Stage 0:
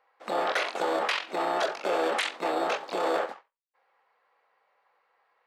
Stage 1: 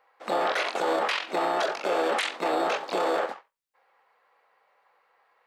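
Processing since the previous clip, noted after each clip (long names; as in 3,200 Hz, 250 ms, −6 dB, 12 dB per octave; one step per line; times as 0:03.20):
brickwall limiter −21 dBFS, peak gain reduction 5.5 dB
level +4 dB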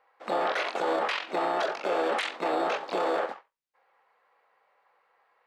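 high-shelf EQ 6,400 Hz −9.5 dB
level −1.5 dB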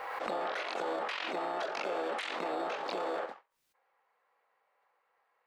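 background raised ahead of every attack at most 25 dB per second
level −8 dB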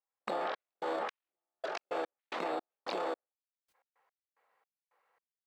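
gate pattern "..xx..xx....x.x" 110 BPM −60 dB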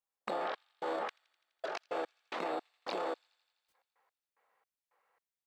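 delay with a high-pass on its return 84 ms, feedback 75%, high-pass 3,000 Hz, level −23 dB
level −1 dB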